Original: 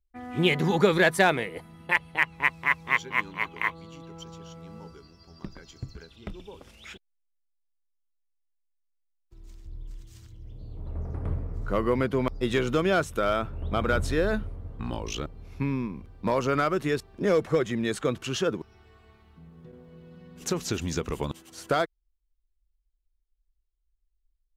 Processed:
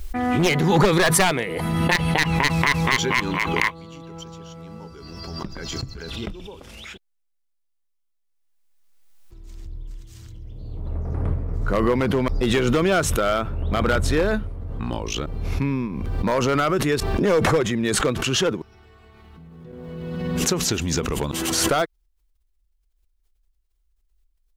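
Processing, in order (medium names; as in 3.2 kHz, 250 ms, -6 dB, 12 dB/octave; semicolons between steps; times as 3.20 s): one-sided wavefolder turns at -17.5 dBFS; swell ahead of each attack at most 25 dB/s; trim +4.5 dB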